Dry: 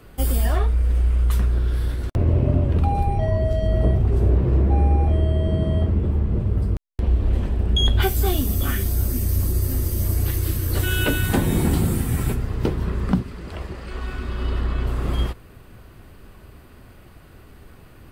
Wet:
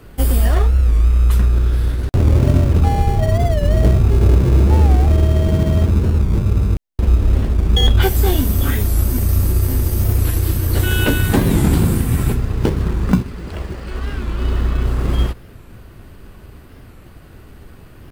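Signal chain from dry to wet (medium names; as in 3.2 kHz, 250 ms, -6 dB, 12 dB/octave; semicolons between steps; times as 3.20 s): in parallel at -8 dB: sample-and-hold 35×; on the sum: warped record 45 rpm, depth 160 cents; trim +3 dB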